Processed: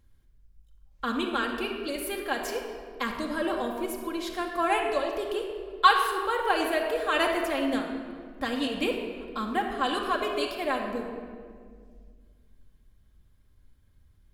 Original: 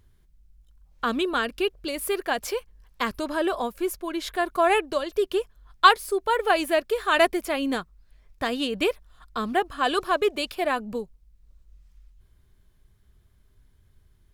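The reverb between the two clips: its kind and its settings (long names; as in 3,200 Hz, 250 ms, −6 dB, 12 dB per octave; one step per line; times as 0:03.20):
rectangular room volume 3,200 cubic metres, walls mixed, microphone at 2.2 metres
level −6 dB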